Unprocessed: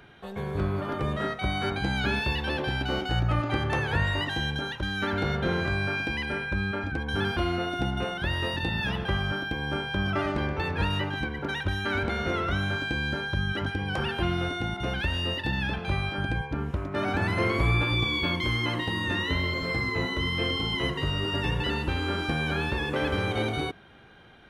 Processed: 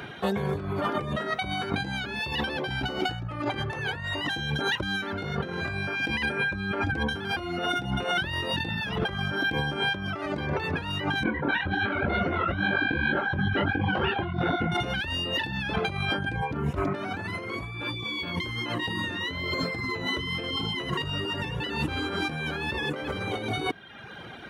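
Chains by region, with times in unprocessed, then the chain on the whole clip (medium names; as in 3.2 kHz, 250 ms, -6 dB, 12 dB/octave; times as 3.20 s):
11.23–14.72 s: distance through air 390 m + doubling 24 ms -7 dB + detune thickener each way 53 cents
whole clip: reverb removal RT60 0.8 s; high-pass 93 Hz 12 dB/octave; compressor with a negative ratio -38 dBFS, ratio -1; trim +8 dB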